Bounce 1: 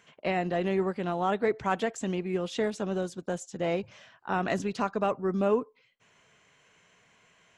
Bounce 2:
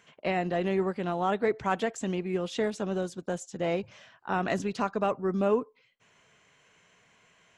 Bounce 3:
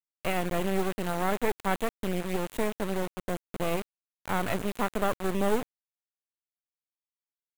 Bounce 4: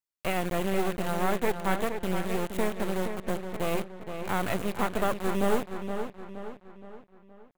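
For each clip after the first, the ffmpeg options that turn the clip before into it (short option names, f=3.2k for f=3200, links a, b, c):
-af anull
-filter_complex "[0:a]acrossover=split=5000[a][b];[b]acompressor=threshold=-57dB:ratio=4:attack=1:release=60[c];[a][c]amix=inputs=2:normalize=0,acrusher=bits=3:dc=4:mix=0:aa=0.000001,equalizer=f=5.2k:t=o:w=0.67:g=-9,volume=2.5dB"
-filter_complex "[0:a]asplit=2[a][b];[b]adelay=470,lowpass=f=4.3k:p=1,volume=-7.5dB,asplit=2[c][d];[d]adelay=470,lowpass=f=4.3k:p=1,volume=0.47,asplit=2[e][f];[f]adelay=470,lowpass=f=4.3k:p=1,volume=0.47,asplit=2[g][h];[h]adelay=470,lowpass=f=4.3k:p=1,volume=0.47,asplit=2[i][j];[j]adelay=470,lowpass=f=4.3k:p=1,volume=0.47[k];[a][c][e][g][i][k]amix=inputs=6:normalize=0"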